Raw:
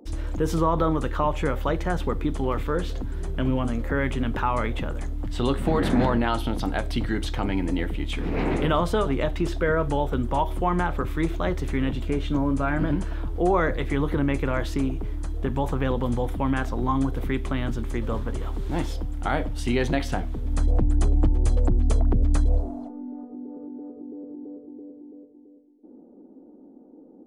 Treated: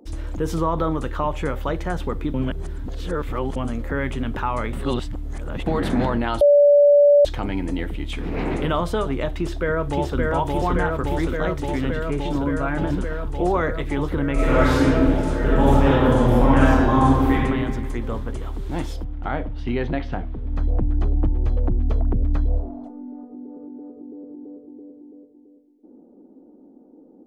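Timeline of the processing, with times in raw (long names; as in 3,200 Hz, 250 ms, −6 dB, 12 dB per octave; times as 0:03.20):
0:02.34–0:03.56: reverse
0:04.73–0:05.66: reverse
0:06.41–0:07.25: beep over 578 Hz −9.5 dBFS
0:09.35–0:10.19: delay throw 570 ms, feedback 85%, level −1.5 dB
0:14.33–0:17.34: thrown reverb, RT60 1.8 s, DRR −9 dB
0:19.04–0:22.84: high-frequency loss of the air 290 metres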